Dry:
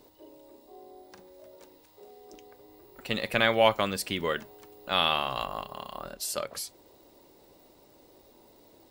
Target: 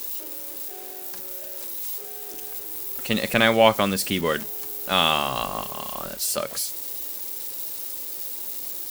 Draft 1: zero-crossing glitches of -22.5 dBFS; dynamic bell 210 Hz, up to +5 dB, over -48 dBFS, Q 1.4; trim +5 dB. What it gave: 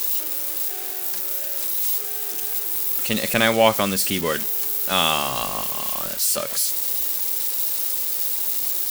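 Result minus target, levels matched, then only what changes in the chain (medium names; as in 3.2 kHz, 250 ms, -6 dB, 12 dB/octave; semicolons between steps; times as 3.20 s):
zero-crossing glitches: distortion +9 dB
change: zero-crossing glitches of -31.5 dBFS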